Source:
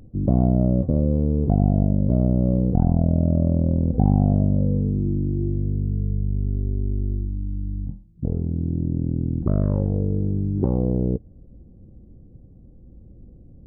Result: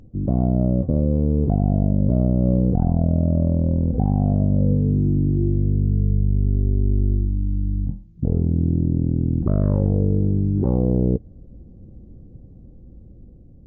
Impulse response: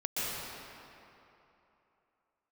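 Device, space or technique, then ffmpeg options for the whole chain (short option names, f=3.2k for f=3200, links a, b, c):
low-bitrate web radio: -filter_complex "[0:a]asettb=1/sr,asplit=3[a][b][c];[a]atrim=end=4.724[d];[b]atrim=start=4.72:end=5.37,asetpts=PTS-STARTPTS,afade=t=in:d=0.004:c=qsin,afade=t=out:st=0.646:d=0.004:c=qsin,aecho=1:1:7.3:0.31,atrim=end_sample=28665[e];[c]atrim=start=5.366[f];[d][e]acrossfade=d=0.004:c1=hsin:c2=qsin[g];[g][f]acrossfade=d=0.004:c1=qsin:c2=hsin,dynaudnorm=f=550:g=5:m=6dB,alimiter=limit=-9.5dB:level=0:latency=1:release=27" -ar 16000 -c:a libmp3lame -b:a 40k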